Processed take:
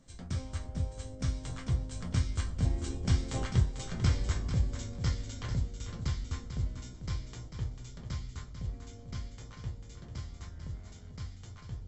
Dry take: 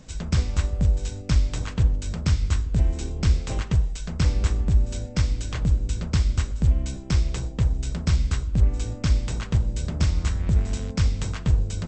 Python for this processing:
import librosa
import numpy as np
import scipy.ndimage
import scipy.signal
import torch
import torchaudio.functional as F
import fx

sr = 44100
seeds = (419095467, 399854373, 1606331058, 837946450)

p1 = fx.doppler_pass(x, sr, speed_mps=21, closest_m=30.0, pass_at_s=3.61)
p2 = fx.notch(p1, sr, hz=2600.0, q=9.4)
p3 = fx.resonator_bank(p2, sr, root=41, chord='sus4', decay_s=0.21)
p4 = p3 + fx.echo_feedback(p3, sr, ms=444, feedback_pct=17, wet_db=-9.0, dry=0)
y = p4 * 10.0 ** (5.5 / 20.0)